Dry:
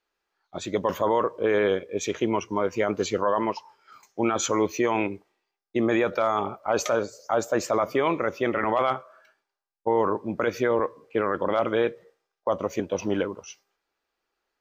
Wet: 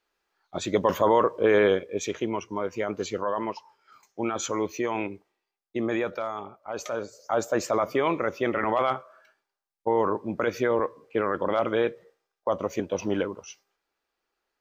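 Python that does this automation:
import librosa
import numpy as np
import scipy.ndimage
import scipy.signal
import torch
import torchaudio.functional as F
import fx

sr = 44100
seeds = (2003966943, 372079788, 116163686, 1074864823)

y = fx.gain(x, sr, db=fx.line((1.62, 2.5), (2.32, -4.5), (6.04, -4.5), (6.54, -12.5), (7.38, -1.0)))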